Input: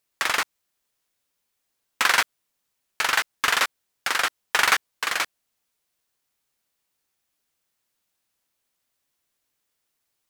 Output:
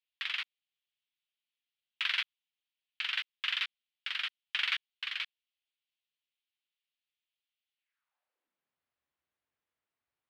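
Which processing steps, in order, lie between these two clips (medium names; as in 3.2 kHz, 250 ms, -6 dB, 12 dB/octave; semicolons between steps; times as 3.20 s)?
bass shelf 390 Hz -7 dB; high-pass sweep 3.1 kHz -> 65 Hz, 7.77–8.88 s; distance through air 390 m; trim -4.5 dB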